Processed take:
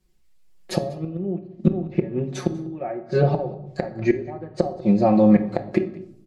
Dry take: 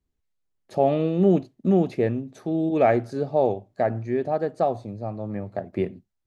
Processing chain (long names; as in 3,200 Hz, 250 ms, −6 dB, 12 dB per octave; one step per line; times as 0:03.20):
treble cut that deepens with the level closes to 1,400 Hz, closed at −19.5 dBFS
comb filter 5.4 ms, depth 96%
automatic gain control gain up to 8 dB
gate with flip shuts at −12 dBFS, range −25 dB
high-shelf EQ 2,600 Hz +8.5 dB
single-tap delay 194 ms −22.5 dB
in parallel at +1 dB: brickwall limiter −17.5 dBFS, peak gain reduction 9 dB
on the sum: high-shelf EQ 5,400 Hz −4.5 dB
on a send at −6 dB: convolution reverb RT60 0.75 s, pre-delay 6 ms